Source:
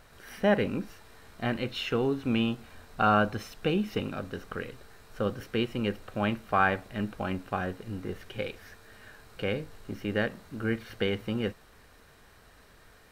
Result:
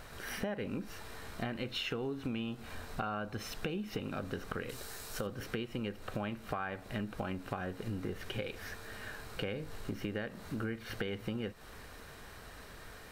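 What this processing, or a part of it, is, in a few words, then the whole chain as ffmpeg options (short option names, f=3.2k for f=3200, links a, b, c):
serial compression, peaks first: -filter_complex "[0:a]acompressor=threshold=-35dB:ratio=6,acompressor=threshold=-44dB:ratio=2,asettb=1/sr,asplit=3[a][b][c];[a]atrim=end=4.694[d];[b]atrim=start=4.69:end=5.27,asetpts=PTS-STARTPTS,afade=t=in:d=0.004:c=qsin,afade=t=out:st=0.576:d=0.004:c=qsin,bass=f=250:g=-3,treble=f=4k:g=11[e];[c]atrim=start=5.266[f];[d][e]acrossfade=d=0.004:c1=hsin:c2=qsin[g];[g][f]acrossfade=d=0.004:c1=qsin:c2=hsin,volume=6dB"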